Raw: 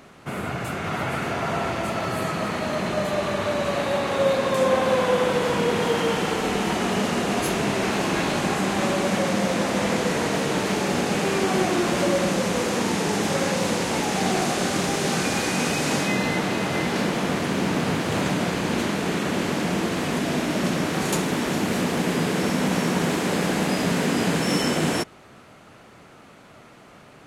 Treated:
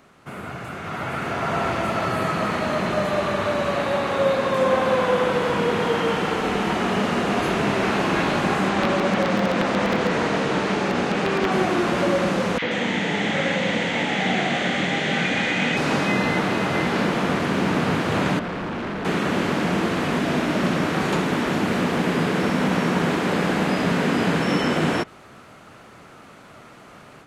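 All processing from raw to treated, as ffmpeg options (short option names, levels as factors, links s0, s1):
-filter_complex "[0:a]asettb=1/sr,asplit=3[s0][s1][s2];[s0]atrim=end=8.694[s3];[s1]atrim=start=8.69:end=11.52,asetpts=PTS-STARTPTS,afade=t=in:d=0.004:c=qsin,afade=t=out:st=2.826:d=0.004:c=qsin,lowpass=7900,bandreject=f=50:t=h:w=6,bandreject=f=100:t=h:w=6,bandreject=f=150:t=h:w=6,aeval=exprs='(mod(4.22*val(0)+1,2)-1)/4.22':c=same[s4];[s2]atrim=start=11.516[s5];[s3][s4]acrossfade=d=0.004:c1=hsin:c2=qsin[s6];[s6][s5]acrossfade=d=0.004:c1=qsin:c2=hsin,asettb=1/sr,asplit=3[s7][s8][s9];[s7]atrim=end=12.584[s10];[s8]atrim=start=12.58:end=15.77,asetpts=PTS-STARTPTS,afade=t=in:d=0.004:c=qsin,afade=t=out:st=3.186:d=0.004:c=qsin,highpass=120,equalizer=f=380:t=q:w=4:g=-7,equalizer=f=1100:t=q:w=4:g=-6,equalizer=f=2000:t=q:w=4:g=9,equalizer=f=3300:t=q:w=4:g=8,equalizer=f=5100:t=q:w=4:g=-5,lowpass=f=7400:w=0.5412,lowpass=f=7400:w=1.3066,acrossover=split=1200|4800[s11][s12][s13];[s11]adelay=40[s14];[s13]adelay=130[s15];[s14][s12][s15]amix=inputs=3:normalize=0,atrim=end_sample=140679[s16];[s9]atrim=start=15.766[s17];[s10][s16]acrossfade=d=0.004:c1=hsin:c2=qsin[s18];[s18][s17]acrossfade=d=0.004:c1=qsin:c2=hsin,asettb=1/sr,asplit=3[s19][s20][s21];[s19]atrim=end=18.394[s22];[s20]atrim=start=18.39:end=19.05,asetpts=PTS-STARTPTS,afade=t=in:d=0.004:c=qsin,afade=t=out:st=0.656:d=0.004:c=qsin,acrossover=split=3100[s23][s24];[s24]acompressor=threshold=0.00316:ratio=4:attack=1:release=60[s25];[s23][s25]amix=inputs=2:normalize=0,asoftclip=type=hard:threshold=0.0376,aemphasis=mode=reproduction:type=50kf[s26];[s21]atrim=start=19.046[s27];[s22][s26]acrossfade=d=0.004:c1=hsin:c2=qsin[s28];[s28][s27]acrossfade=d=0.004:c1=qsin:c2=hsin,acrossover=split=4200[s29][s30];[s30]acompressor=threshold=0.00501:ratio=4:attack=1:release=60[s31];[s29][s31]amix=inputs=2:normalize=0,equalizer=f=1300:t=o:w=0.77:g=3,dynaudnorm=f=850:g=3:m=2.82,volume=0.501"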